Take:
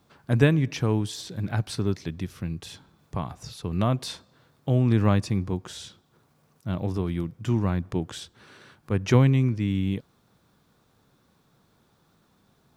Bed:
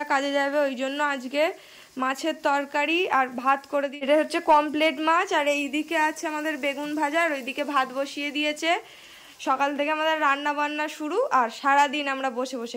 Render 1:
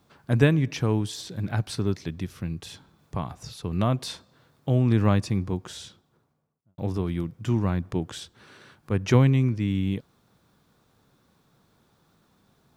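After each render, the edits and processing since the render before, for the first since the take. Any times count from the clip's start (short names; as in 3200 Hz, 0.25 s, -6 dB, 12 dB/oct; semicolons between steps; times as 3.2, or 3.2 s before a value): 5.74–6.78 studio fade out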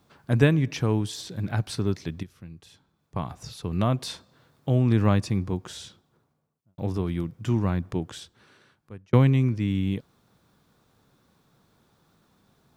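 2.23–3.16 gain -11.5 dB; 7.84–9.13 fade out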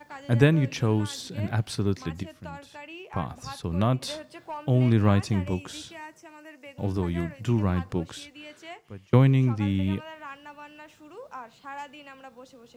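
add bed -19 dB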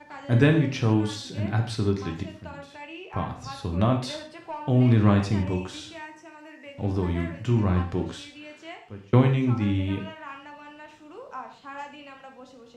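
air absorption 53 m; non-linear reverb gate 0.18 s falling, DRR 2.5 dB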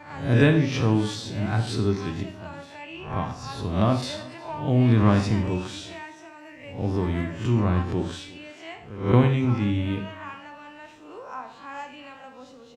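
spectral swells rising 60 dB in 0.47 s; echo 0.359 s -22 dB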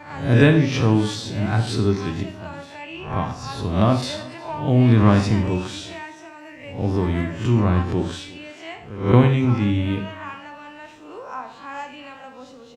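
gain +4 dB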